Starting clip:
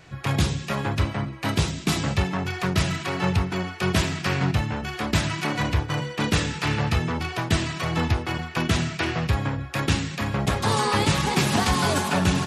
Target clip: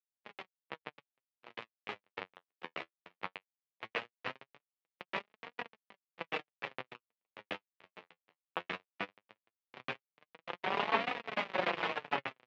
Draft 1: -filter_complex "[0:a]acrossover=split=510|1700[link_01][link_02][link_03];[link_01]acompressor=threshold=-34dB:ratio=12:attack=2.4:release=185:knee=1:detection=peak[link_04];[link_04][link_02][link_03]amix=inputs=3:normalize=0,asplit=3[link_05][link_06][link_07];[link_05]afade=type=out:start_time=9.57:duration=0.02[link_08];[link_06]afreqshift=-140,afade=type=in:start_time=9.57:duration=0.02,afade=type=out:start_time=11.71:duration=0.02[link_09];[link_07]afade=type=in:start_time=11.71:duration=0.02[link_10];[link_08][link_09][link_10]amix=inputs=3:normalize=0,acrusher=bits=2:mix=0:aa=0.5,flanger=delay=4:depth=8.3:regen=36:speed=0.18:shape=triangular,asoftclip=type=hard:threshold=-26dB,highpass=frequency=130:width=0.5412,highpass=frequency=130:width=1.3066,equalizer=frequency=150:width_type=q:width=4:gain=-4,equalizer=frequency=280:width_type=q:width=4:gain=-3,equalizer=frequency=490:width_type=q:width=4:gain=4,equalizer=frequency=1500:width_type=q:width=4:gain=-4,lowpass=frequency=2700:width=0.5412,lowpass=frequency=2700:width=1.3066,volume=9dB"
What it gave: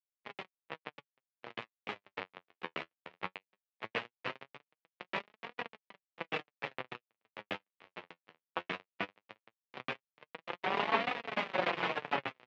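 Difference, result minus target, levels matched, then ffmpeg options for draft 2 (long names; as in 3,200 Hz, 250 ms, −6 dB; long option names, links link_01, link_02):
downward compressor: peak gain reduction −8.5 dB
-filter_complex "[0:a]acrossover=split=510|1700[link_01][link_02][link_03];[link_01]acompressor=threshold=-43.5dB:ratio=12:attack=2.4:release=185:knee=1:detection=peak[link_04];[link_04][link_02][link_03]amix=inputs=3:normalize=0,asplit=3[link_05][link_06][link_07];[link_05]afade=type=out:start_time=9.57:duration=0.02[link_08];[link_06]afreqshift=-140,afade=type=in:start_time=9.57:duration=0.02,afade=type=out:start_time=11.71:duration=0.02[link_09];[link_07]afade=type=in:start_time=11.71:duration=0.02[link_10];[link_08][link_09][link_10]amix=inputs=3:normalize=0,acrusher=bits=2:mix=0:aa=0.5,flanger=delay=4:depth=8.3:regen=36:speed=0.18:shape=triangular,asoftclip=type=hard:threshold=-26dB,highpass=frequency=130:width=0.5412,highpass=frequency=130:width=1.3066,equalizer=frequency=150:width_type=q:width=4:gain=-4,equalizer=frequency=280:width_type=q:width=4:gain=-3,equalizer=frequency=490:width_type=q:width=4:gain=4,equalizer=frequency=1500:width_type=q:width=4:gain=-4,lowpass=frequency=2700:width=0.5412,lowpass=frequency=2700:width=1.3066,volume=9dB"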